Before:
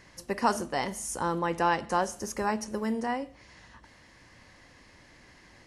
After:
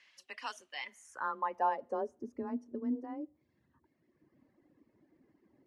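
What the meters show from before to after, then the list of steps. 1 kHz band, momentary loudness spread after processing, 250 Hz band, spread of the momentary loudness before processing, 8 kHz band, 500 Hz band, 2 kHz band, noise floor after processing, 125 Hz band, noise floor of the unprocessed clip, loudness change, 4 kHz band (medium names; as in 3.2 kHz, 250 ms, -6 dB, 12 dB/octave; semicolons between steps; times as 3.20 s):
-7.5 dB, 12 LU, -7.0 dB, 6 LU, under -20 dB, -9.0 dB, -10.0 dB, -77 dBFS, under -20 dB, -57 dBFS, -8.0 dB, no reading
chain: frequency shift +23 Hz; band-pass sweep 2.9 kHz -> 290 Hz, 0.74–2.29 s; reverb removal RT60 1.6 s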